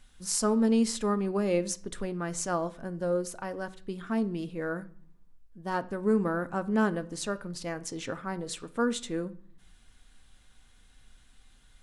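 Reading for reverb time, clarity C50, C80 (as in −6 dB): 0.50 s, 19.0 dB, 22.5 dB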